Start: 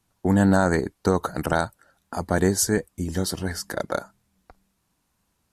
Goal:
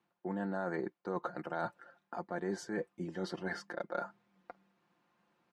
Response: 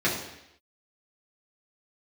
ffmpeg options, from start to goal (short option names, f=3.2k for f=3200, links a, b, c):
-af "highpass=250,lowpass=2.4k,aecho=1:1:5.7:0.58,areverse,acompressor=threshold=-37dB:ratio=5,areverse,volume=1dB"